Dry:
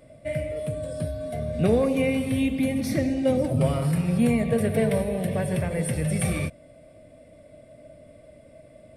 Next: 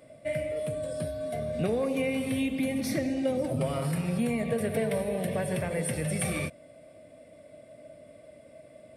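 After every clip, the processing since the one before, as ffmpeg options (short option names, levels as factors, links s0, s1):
-af "highpass=f=130:p=1,lowshelf=f=250:g=-4,acompressor=threshold=0.0562:ratio=4"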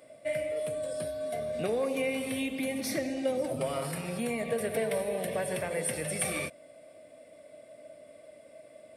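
-af "bass=f=250:g=-11,treble=f=4000:g=2"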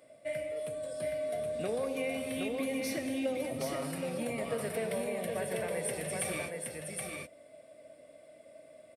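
-af "aecho=1:1:771:0.668,volume=0.596"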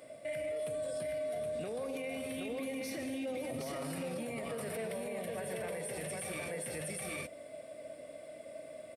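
-af "acompressor=threshold=0.0126:ratio=6,alimiter=level_in=5.01:limit=0.0631:level=0:latency=1:release=25,volume=0.2,volume=2.11"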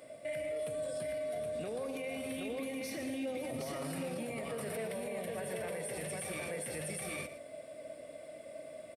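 -af "aecho=1:1:116:0.224"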